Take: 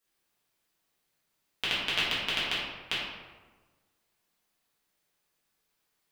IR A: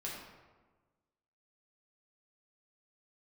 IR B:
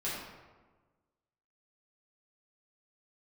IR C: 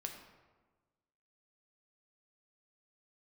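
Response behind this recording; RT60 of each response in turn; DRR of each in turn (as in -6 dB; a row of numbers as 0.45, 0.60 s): B; 1.3, 1.3, 1.3 s; -5.0, -9.5, 2.5 dB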